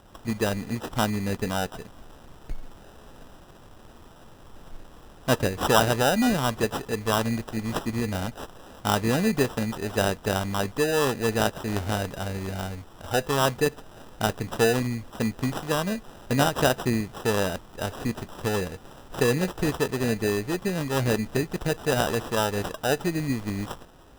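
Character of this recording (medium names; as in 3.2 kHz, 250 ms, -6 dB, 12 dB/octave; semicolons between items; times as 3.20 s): aliases and images of a low sample rate 2.2 kHz, jitter 0%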